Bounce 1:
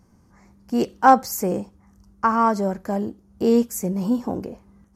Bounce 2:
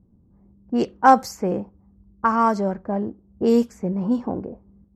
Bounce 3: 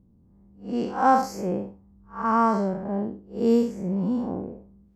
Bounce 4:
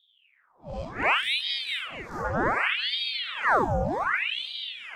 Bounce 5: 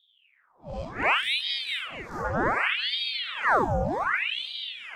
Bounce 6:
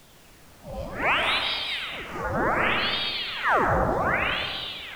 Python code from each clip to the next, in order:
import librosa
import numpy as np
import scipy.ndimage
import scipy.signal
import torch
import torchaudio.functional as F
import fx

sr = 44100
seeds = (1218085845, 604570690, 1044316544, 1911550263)

y1 = fx.env_lowpass(x, sr, base_hz=370.0, full_db=-13.5)
y2 = fx.spec_blur(y1, sr, span_ms=157.0)
y3 = fx.echo_alternate(y2, sr, ms=220, hz=1000.0, feedback_pct=81, wet_db=-4)
y3 = fx.env_flanger(y3, sr, rest_ms=8.2, full_db=-17.5)
y3 = fx.ring_lfo(y3, sr, carrier_hz=1900.0, swing_pct=85, hz=0.66)
y4 = y3
y5 = fx.dmg_noise_colour(y4, sr, seeds[0], colour='pink', level_db=-53.0)
y5 = fx.rev_freeverb(y5, sr, rt60_s=1.8, hf_ratio=0.3, predelay_ms=85, drr_db=2.5)